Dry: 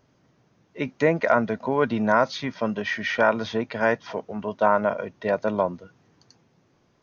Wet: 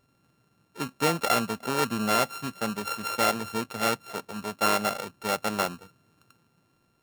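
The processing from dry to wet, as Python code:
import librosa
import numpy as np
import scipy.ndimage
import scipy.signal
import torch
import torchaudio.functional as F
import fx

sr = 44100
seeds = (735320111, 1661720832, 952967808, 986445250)

y = np.r_[np.sort(x[:len(x) // 32 * 32].reshape(-1, 32), axis=1).ravel(), x[len(x) // 32 * 32:]]
y = y * librosa.db_to_amplitude(-4.5)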